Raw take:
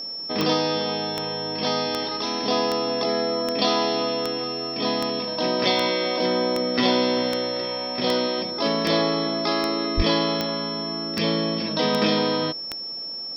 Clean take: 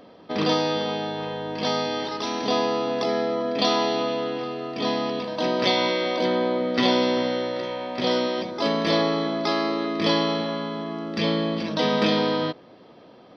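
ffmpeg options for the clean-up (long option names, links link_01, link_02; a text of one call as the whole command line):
ffmpeg -i in.wav -filter_complex "[0:a]adeclick=threshold=4,bandreject=frequency=5400:width=30,asplit=3[link_01][link_02][link_03];[link_01]afade=type=out:start_time=9.96:duration=0.02[link_04];[link_02]highpass=frequency=140:width=0.5412,highpass=frequency=140:width=1.3066,afade=type=in:start_time=9.96:duration=0.02,afade=type=out:start_time=10.08:duration=0.02[link_05];[link_03]afade=type=in:start_time=10.08:duration=0.02[link_06];[link_04][link_05][link_06]amix=inputs=3:normalize=0" out.wav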